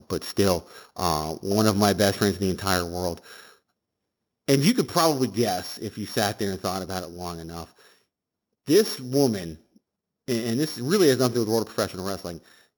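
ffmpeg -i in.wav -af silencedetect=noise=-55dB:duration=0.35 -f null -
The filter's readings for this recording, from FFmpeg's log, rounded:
silence_start: 3.58
silence_end: 4.48 | silence_duration: 0.90
silence_start: 7.98
silence_end: 8.66 | silence_duration: 0.68
silence_start: 9.78
silence_end: 10.28 | silence_duration: 0.50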